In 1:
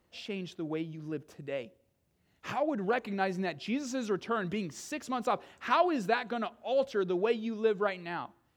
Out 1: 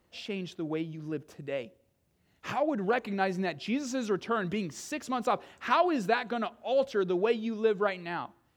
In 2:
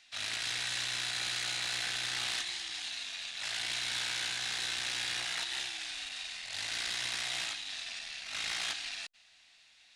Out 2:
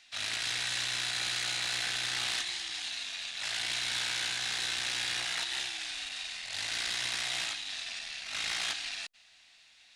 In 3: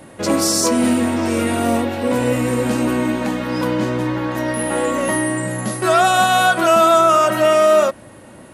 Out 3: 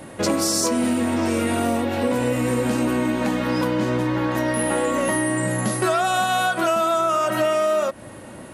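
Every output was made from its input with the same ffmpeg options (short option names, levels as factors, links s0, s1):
-af "acompressor=threshold=0.1:ratio=6,volume=1.26"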